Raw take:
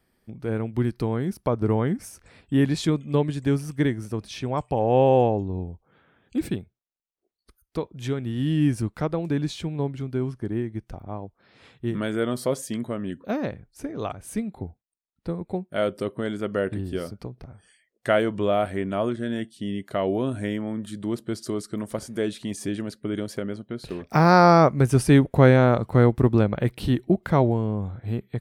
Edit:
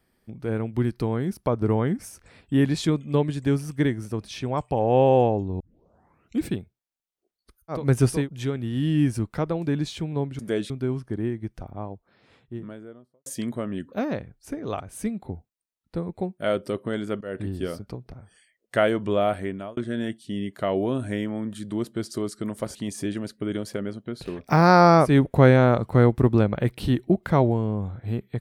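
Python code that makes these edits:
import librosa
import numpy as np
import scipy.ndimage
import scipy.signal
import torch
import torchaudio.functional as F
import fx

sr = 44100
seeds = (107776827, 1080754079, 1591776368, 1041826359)

y = fx.studio_fade_out(x, sr, start_s=11.02, length_s=1.56)
y = fx.edit(y, sr, fx.tape_start(start_s=5.6, length_s=0.81),
    fx.fade_in_from(start_s=16.53, length_s=0.26, floor_db=-20.5),
    fx.fade_out_span(start_s=18.55, length_s=0.54, curve='qsin'),
    fx.move(start_s=22.07, length_s=0.31, to_s=10.02),
    fx.move(start_s=24.72, length_s=0.37, to_s=7.8, crossfade_s=0.24), tone=tone)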